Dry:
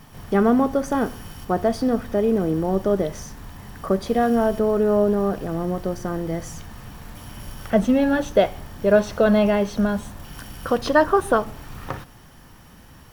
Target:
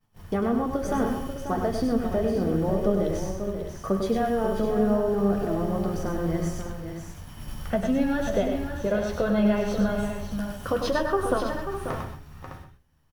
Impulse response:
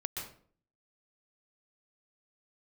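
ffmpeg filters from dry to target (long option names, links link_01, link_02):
-filter_complex "[0:a]agate=range=-33dB:threshold=-32dB:ratio=3:detection=peak,bandreject=frequency=60:width_type=h:width=6,bandreject=frequency=120:width_type=h:width=6,bandreject=frequency=180:width_type=h:width=6,bandreject=frequency=240:width_type=h:width=6,bandreject=frequency=300:width_type=h:width=6,bandreject=frequency=360:width_type=h:width=6,bandreject=frequency=420:width_type=h:width=6,acompressor=threshold=-19dB:ratio=6,flanger=delay=8.7:depth=5.3:regen=44:speed=0.73:shape=triangular,aecho=1:1:100|539|608:0.501|0.355|0.299,asplit=2[link_01][link_02];[1:a]atrim=start_sample=2205,afade=type=out:start_time=0.19:duration=0.01,atrim=end_sample=8820,lowshelf=frequency=240:gain=10[link_03];[link_02][link_03]afir=irnorm=-1:irlink=0,volume=-3dB[link_04];[link_01][link_04]amix=inputs=2:normalize=0,volume=-3.5dB"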